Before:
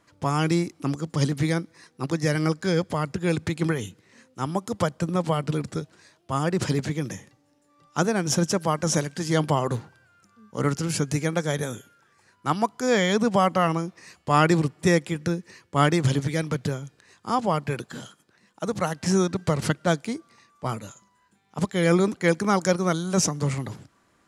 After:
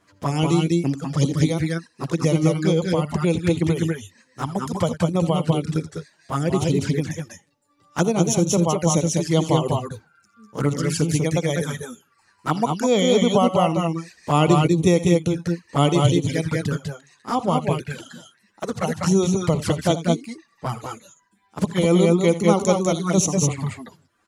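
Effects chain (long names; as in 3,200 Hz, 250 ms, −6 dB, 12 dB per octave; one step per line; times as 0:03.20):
reverb reduction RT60 0.93 s
multi-tap delay 62/80/87/197/209 ms −18.5/−17.5/−18.5/−4/−8 dB
flanger swept by the level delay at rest 10.7 ms, full sweep at −20 dBFS
level +4.5 dB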